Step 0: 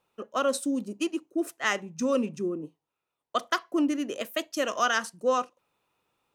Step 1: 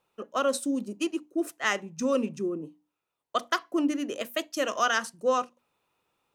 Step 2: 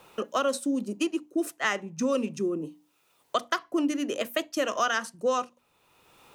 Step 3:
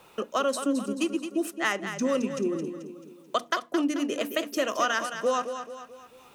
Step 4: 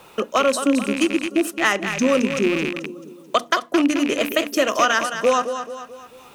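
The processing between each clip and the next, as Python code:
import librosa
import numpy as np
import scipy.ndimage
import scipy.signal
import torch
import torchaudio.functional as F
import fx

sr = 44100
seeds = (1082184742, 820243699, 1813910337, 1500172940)

y1 = fx.hum_notches(x, sr, base_hz=60, count=5)
y2 = fx.band_squash(y1, sr, depth_pct=70)
y3 = fx.echo_feedback(y2, sr, ms=218, feedback_pct=46, wet_db=-9)
y4 = fx.rattle_buzz(y3, sr, strikes_db=-41.0, level_db=-23.0)
y4 = y4 * librosa.db_to_amplitude(8.0)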